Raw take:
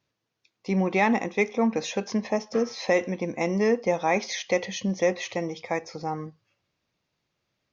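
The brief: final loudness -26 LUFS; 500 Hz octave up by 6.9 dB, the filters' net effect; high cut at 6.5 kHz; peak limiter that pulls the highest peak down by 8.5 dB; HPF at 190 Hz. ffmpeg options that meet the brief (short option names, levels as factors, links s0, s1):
-af "highpass=190,lowpass=6500,equalizer=f=500:t=o:g=8,alimiter=limit=0.188:level=0:latency=1"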